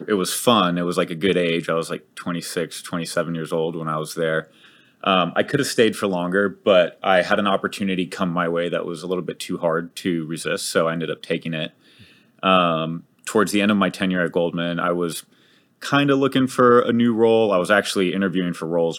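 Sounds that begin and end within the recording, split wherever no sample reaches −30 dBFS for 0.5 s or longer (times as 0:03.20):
0:05.04–0:11.67
0:12.43–0:15.20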